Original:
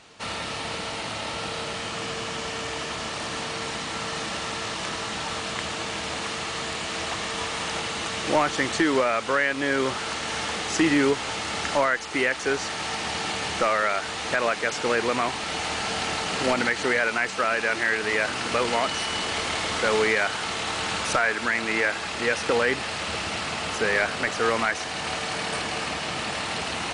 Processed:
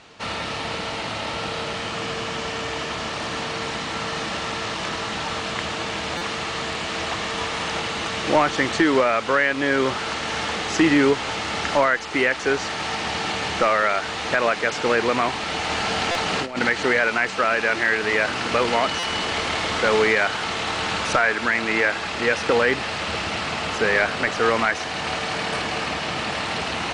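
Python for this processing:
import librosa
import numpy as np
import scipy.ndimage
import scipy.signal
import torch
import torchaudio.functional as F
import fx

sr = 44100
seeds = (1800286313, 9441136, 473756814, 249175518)

y = fx.over_compress(x, sr, threshold_db=-27.0, ratio=-0.5, at=(15.69, 16.61))
y = fx.air_absorb(y, sr, metres=68.0)
y = fx.buffer_glitch(y, sr, at_s=(6.17, 16.11, 18.99), block=256, repeats=6)
y = y * librosa.db_to_amplitude(4.0)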